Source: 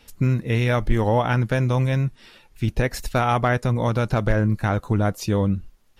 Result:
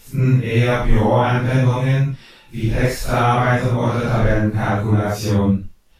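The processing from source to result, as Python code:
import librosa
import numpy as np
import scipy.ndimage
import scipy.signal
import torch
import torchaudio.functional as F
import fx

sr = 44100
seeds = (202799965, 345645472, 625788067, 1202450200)

y = fx.phase_scramble(x, sr, seeds[0], window_ms=200)
y = y * librosa.db_to_amplitude(4.5)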